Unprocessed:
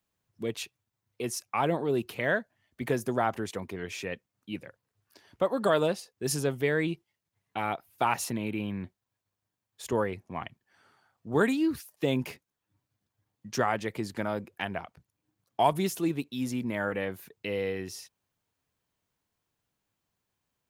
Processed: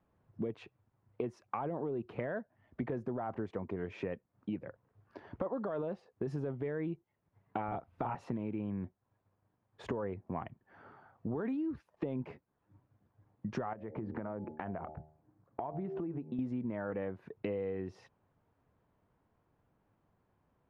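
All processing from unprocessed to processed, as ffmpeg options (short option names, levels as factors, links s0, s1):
-filter_complex "[0:a]asettb=1/sr,asplit=3[s0][s1][s2];[s0]atrim=end=7.684[s3];[s1]atrim=start=7.68:end=8.15,asetpts=PTS-STARTPTS,afade=t=in:d=0.004:c=qsin,afade=t=out:st=0.466:d=0.004:c=qsin,lowshelf=f=140:g=11,asplit=2[s4][s5];[s5]adelay=35,volume=0.794[s6];[s4][s6]amix=inputs=2:normalize=0,atrim=end_sample=20727[s7];[s2]atrim=start=8.146[s8];[s3][s7]acrossfade=d=0.004:c1=hsin:c2=qsin[s9];[s9][s8]acrossfade=d=0.004:c1=qsin:c2=hsin,asettb=1/sr,asplit=3[s10][s11][s12];[s10]atrim=end=13.734[s13];[s11]atrim=start=13.73:end=16.39,asetpts=PTS-STARTPTS,afade=t=in:d=0.004:c=qsin,afade=t=out:st=2.656:d=0.004:c=qsin,lowpass=2000,bandreject=f=77.28:t=h:w=4,bandreject=f=154.56:t=h:w=4,bandreject=f=231.84:t=h:w=4,bandreject=f=309.12:t=h:w=4,bandreject=f=386.4:t=h:w=4,bandreject=f=463.68:t=h:w=4,bandreject=f=540.96:t=h:w=4,bandreject=f=618.24:t=h:w=4,bandreject=f=695.52:t=h:w=4,bandreject=f=772.8:t=h:w=4,bandreject=f=850.08:t=h:w=4,acompressor=threshold=0.00708:ratio=5:attack=3.2:release=140:knee=1:detection=peak[s14];[s12]atrim=start=16.386[s15];[s13][s14]acrossfade=d=0.004:c1=hsin:c2=qsin[s16];[s16][s15]acrossfade=d=0.004:c1=qsin:c2=hsin,lowpass=1100,alimiter=limit=0.0668:level=0:latency=1:release=12,acompressor=threshold=0.00447:ratio=6,volume=3.76"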